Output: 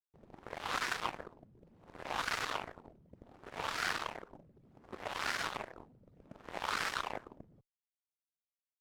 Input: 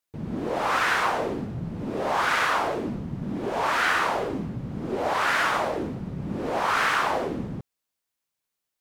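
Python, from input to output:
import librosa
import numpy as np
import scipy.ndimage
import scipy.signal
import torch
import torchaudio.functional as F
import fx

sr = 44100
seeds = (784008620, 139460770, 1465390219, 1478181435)

y = fx.dereverb_blind(x, sr, rt60_s=0.87)
y = fx.cheby_harmonics(y, sr, harmonics=(3, 4, 6, 7), levels_db=(-13, -27, -43, -24), full_scale_db=-12.0)
y = F.gain(torch.from_numpy(y), -4.5).numpy()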